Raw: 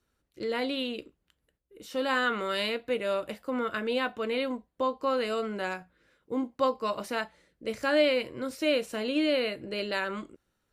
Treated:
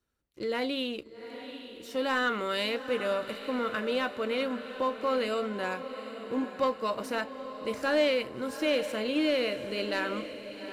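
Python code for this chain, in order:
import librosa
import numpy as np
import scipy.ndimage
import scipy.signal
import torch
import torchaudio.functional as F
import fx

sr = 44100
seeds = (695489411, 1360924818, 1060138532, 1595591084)

p1 = fx.leveller(x, sr, passes=1)
p2 = p1 + fx.echo_diffused(p1, sr, ms=812, feedback_pct=54, wet_db=-11, dry=0)
y = F.gain(torch.from_numpy(p2), -4.0).numpy()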